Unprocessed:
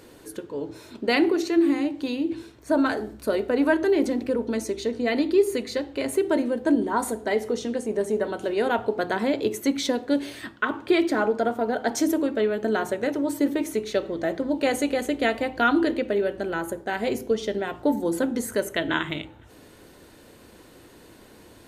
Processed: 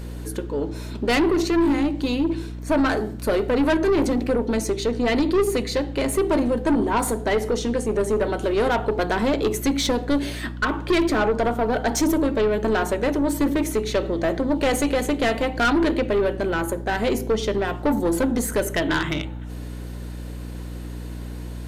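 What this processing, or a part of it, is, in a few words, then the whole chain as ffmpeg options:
valve amplifier with mains hum: -af "aeval=exprs='(tanh(12.6*val(0)+0.2)-tanh(0.2))/12.6':c=same,aeval=exprs='val(0)+0.0126*(sin(2*PI*60*n/s)+sin(2*PI*2*60*n/s)/2+sin(2*PI*3*60*n/s)/3+sin(2*PI*4*60*n/s)/4+sin(2*PI*5*60*n/s)/5)':c=same,volume=2.11"

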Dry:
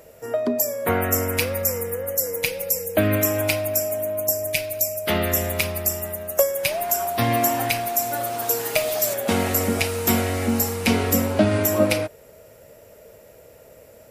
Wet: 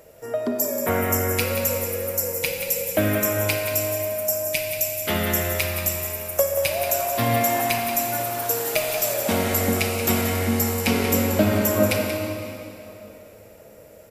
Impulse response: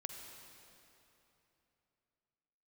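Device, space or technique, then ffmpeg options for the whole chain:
cave: -filter_complex "[0:a]aecho=1:1:182:0.355[s0];[1:a]atrim=start_sample=2205[s1];[s0][s1]afir=irnorm=-1:irlink=0,volume=1.26"

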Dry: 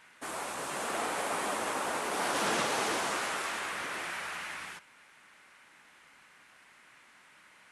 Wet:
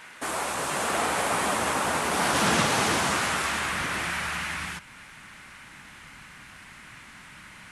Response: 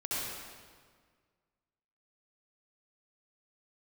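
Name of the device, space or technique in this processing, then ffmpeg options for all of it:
parallel compression: -filter_complex "[0:a]asubboost=boost=7:cutoff=170,asplit=2[s0][s1];[s1]acompressor=threshold=0.00316:ratio=6,volume=0.794[s2];[s0][s2]amix=inputs=2:normalize=0,volume=2.24"

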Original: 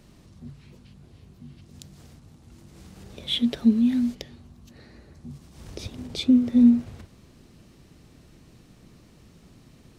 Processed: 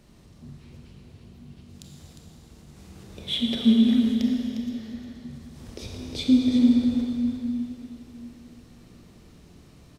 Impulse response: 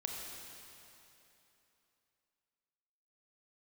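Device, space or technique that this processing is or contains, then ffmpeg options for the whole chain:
cave: -filter_complex "[0:a]aecho=1:1:355:0.376[s0];[1:a]atrim=start_sample=2205[s1];[s0][s1]afir=irnorm=-1:irlink=0"

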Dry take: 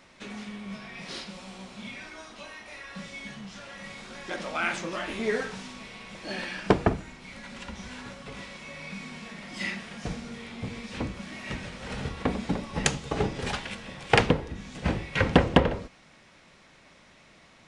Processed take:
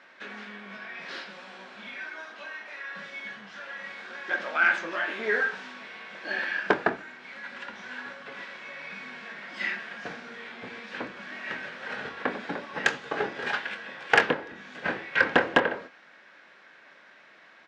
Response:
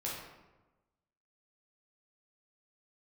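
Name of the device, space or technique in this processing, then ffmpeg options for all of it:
intercom: -filter_complex "[0:a]highpass=360,lowpass=3700,equalizer=f=1600:t=o:w=0.36:g=12,asoftclip=type=tanh:threshold=0.447,asplit=2[s0][s1];[s1]adelay=24,volume=0.282[s2];[s0][s2]amix=inputs=2:normalize=0"

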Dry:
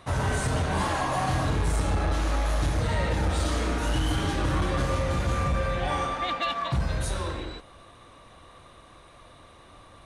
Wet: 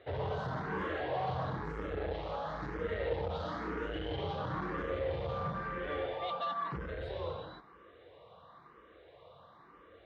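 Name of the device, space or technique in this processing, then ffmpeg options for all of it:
barber-pole phaser into a guitar amplifier: -filter_complex "[0:a]asplit=2[s0][s1];[s1]afreqshift=1[s2];[s0][s2]amix=inputs=2:normalize=1,asoftclip=type=tanh:threshold=0.0562,highpass=98,equalizer=f=110:t=q:w=4:g=-5,equalizer=f=250:t=q:w=4:g=-8,equalizer=f=460:t=q:w=4:g=10,equalizer=f=2500:t=q:w=4:g=-7,lowpass=f=3400:w=0.5412,lowpass=f=3400:w=1.3066,volume=0.668"

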